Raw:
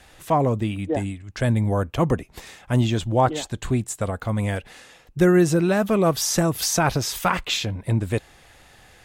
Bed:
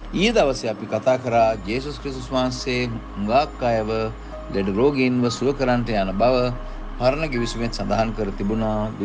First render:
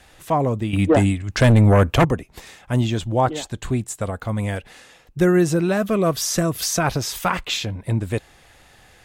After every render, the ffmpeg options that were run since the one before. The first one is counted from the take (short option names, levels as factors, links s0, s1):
-filter_complex "[0:a]asettb=1/sr,asplit=3[s0][s1][s2];[s0]atrim=end=0.734[s3];[s1]atrim=start=0.73:end=2.05,asetpts=PTS-STARTPTS,afade=t=in:d=0.004:c=qsin,afade=t=out:st=1.316:d=0.004:c=qsin,aeval=exprs='0.355*sin(PI/2*2.24*val(0)/0.355)':c=same[s4];[s2]atrim=start=2.046[s5];[s3][s4]acrossfade=d=0.004:c1=hsin:c2=qsin[s6];[s6][s5]acrossfade=d=0.004:c1=qsin:c2=hsin,asettb=1/sr,asplit=3[s7][s8][s9];[s7]atrim=end=5.774[s10];[s8]atrim=start=5.77:end=6.84,asetpts=PTS-STARTPTS,afade=t=in:d=0.004:c=qsin,afade=t=out:st=1.066:d=0.004:c=qsin,asuperstop=centerf=860:order=4:qfactor=5.7[s11];[s9]atrim=start=6.836[s12];[s10][s11]acrossfade=d=0.004:c1=hsin:c2=qsin[s13];[s13][s12]acrossfade=d=0.004:c1=qsin:c2=hsin"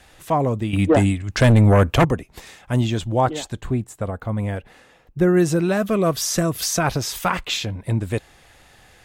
-filter_complex "[0:a]asettb=1/sr,asplit=3[s0][s1][s2];[s0]atrim=end=3.614[s3];[s1]atrim=start=3.61:end=5.37,asetpts=PTS-STARTPTS,afade=t=in:d=0.004:c=qsin,afade=t=out:st=1.756:d=0.004:c=qsin,equalizer=f=7100:t=o:w=3:g=-10.5[s4];[s2]atrim=start=5.366[s5];[s3][s4]acrossfade=d=0.004:c1=hsin:c2=qsin[s6];[s6][s5]acrossfade=d=0.004:c1=qsin:c2=hsin"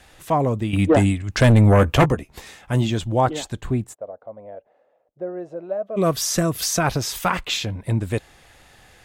-filter_complex "[0:a]asettb=1/sr,asplit=3[s0][s1][s2];[s0]atrim=end=1.784[s3];[s1]atrim=start=1.78:end=2.91,asetpts=PTS-STARTPTS,afade=t=in:d=0.004:c=qsin,afade=t=out:st=1.126:d=0.004:c=qsin,asplit=2[s4][s5];[s5]adelay=14,volume=0.355[s6];[s4][s6]amix=inputs=2:normalize=0,atrim=end_sample=49833[s7];[s2]atrim=start=2.906[s8];[s3][s7]acrossfade=d=0.004:c1=hsin:c2=qsin[s9];[s9][s8]acrossfade=d=0.004:c1=qsin:c2=hsin,asplit=3[s10][s11][s12];[s10]afade=t=out:st=3.93:d=0.02[s13];[s11]bandpass=f=600:t=q:w=5.3,afade=t=in:st=3.93:d=0.02,afade=t=out:st=5.96:d=0.02[s14];[s12]afade=t=in:st=5.96:d=0.02[s15];[s13][s14][s15]amix=inputs=3:normalize=0"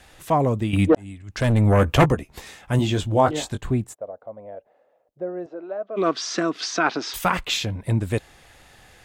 -filter_complex "[0:a]asettb=1/sr,asplit=3[s0][s1][s2];[s0]atrim=end=2.774[s3];[s1]atrim=start=2.77:end=3.58,asetpts=PTS-STARTPTS,afade=t=in:d=0.004:c=qsin,afade=t=out:st=0.806:d=0.004:c=qsin,asplit=2[s4][s5];[s5]adelay=20,volume=0.501[s6];[s4][s6]amix=inputs=2:normalize=0,atrim=end_sample=35721[s7];[s2]atrim=start=3.576[s8];[s3][s7]acrossfade=d=0.004:c1=hsin:c2=qsin[s9];[s9][s8]acrossfade=d=0.004:c1=qsin:c2=hsin,asettb=1/sr,asplit=3[s10][s11][s12];[s10]atrim=end=5.464[s13];[s11]atrim=start=5.46:end=7.14,asetpts=PTS-STARTPTS,afade=t=in:d=0.004:c=qsin,afade=t=out:st=1.676:d=0.004:c=qsin,highpass=f=250:w=0.5412,highpass=f=250:w=1.3066,equalizer=f=300:t=q:w=4:g=4,equalizer=f=550:t=q:w=4:g=-7,equalizer=f=1400:t=q:w=4:g=5,lowpass=f=5100:w=0.5412,lowpass=f=5100:w=1.3066[s14];[s12]atrim=start=7.136[s15];[s13][s14]acrossfade=d=0.004:c1=hsin:c2=qsin[s16];[s16][s15]acrossfade=d=0.004:c1=qsin:c2=hsin,asplit=2[s17][s18];[s17]atrim=end=0.95,asetpts=PTS-STARTPTS,afade=t=out:st=0.946:d=0.004:c=hsin[s19];[s18]atrim=start=0.95,asetpts=PTS-STARTPTS,afade=t=in:d=1.09[s20];[s19][s20]concat=n=2:v=0:a=1"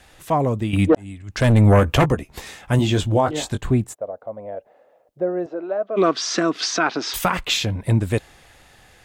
-af "dynaudnorm=f=130:g=17:m=2.51,alimiter=limit=0.398:level=0:latency=1:release=259"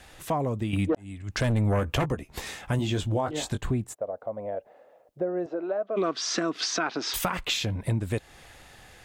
-af "acompressor=threshold=0.0398:ratio=2.5"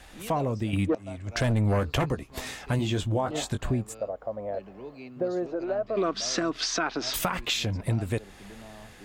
-filter_complex "[1:a]volume=0.0596[s0];[0:a][s0]amix=inputs=2:normalize=0"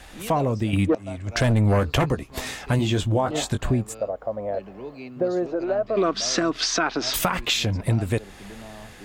-af "volume=1.78"